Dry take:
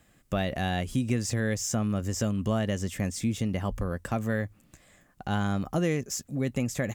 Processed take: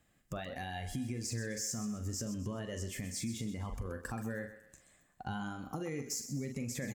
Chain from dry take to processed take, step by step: doubling 43 ms -8.5 dB; peak limiter -22.5 dBFS, peak gain reduction 8.5 dB; compression, threshold -33 dBFS, peak gain reduction 7.5 dB; spectral noise reduction 9 dB; thinning echo 128 ms, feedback 40%, high-pass 370 Hz, level -11 dB; trim -1 dB

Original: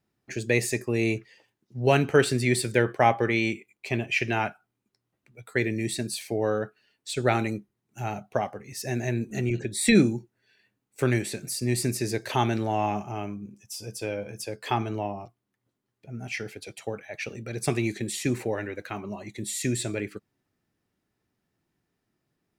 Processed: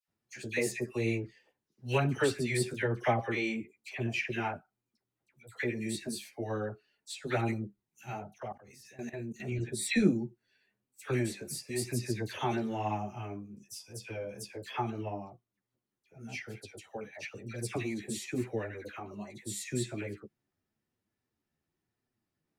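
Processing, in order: chorus voices 2, 1 Hz, delay 11 ms, depth 3 ms; phase dispersion lows, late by 81 ms, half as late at 1.6 kHz; 8.38–9.40 s: level held to a coarse grid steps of 17 dB; trim -4.5 dB

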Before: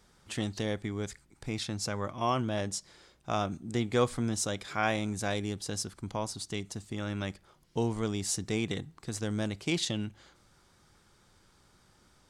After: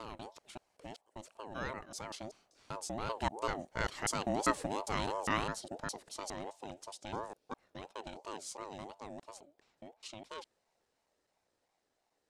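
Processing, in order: slices played last to first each 200 ms, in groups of 4; Doppler pass-by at 4.50 s, 13 m/s, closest 16 m; ring modulator with a swept carrier 610 Hz, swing 30%, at 2.9 Hz

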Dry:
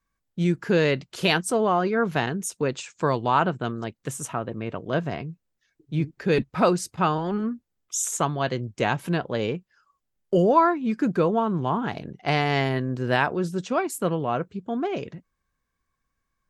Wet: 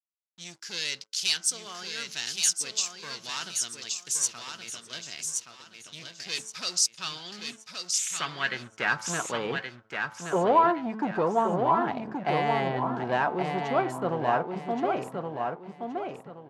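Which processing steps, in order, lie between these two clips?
de-hum 109.2 Hz, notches 14; expander -41 dBFS; peaking EQ 790 Hz -12.5 dB 2.2 oct; level rider gain up to 8 dB; waveshaping leveller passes 3; band-pass sweep 5.5 kHz -> 800 Hz, 6.93–9.62 s; feedback delay 1123 ms, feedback 29%, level -5 dB; trim -3.5 dB

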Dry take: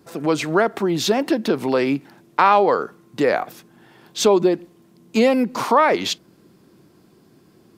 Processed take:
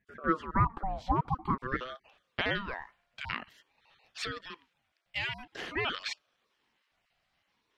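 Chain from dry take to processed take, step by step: random holes in the spectrogram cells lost 23%; band-pass sweep 590 Hz -> 2.4 kHz, 1.57–2.18 s; ring modulator with a swept carrier 650 Hz, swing 45%, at 0.49 Hz; trim -1 dB

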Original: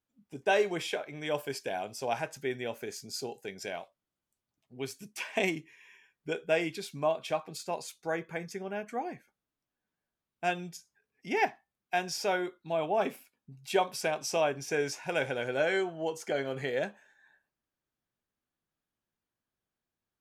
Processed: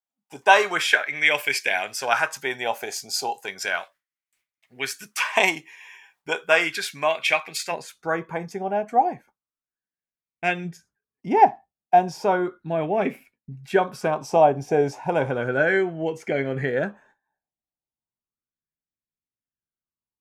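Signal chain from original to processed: tilt shelf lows -7.5 dB, about 630 Hz, from 7.71 s lows +3.5 dB, from 10.64 s lows +9 dB; gate with hold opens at -57 dBFS; sweeping bell 0.34 Hz 750–2200 Hz +15 dB; trim +4.5 dB

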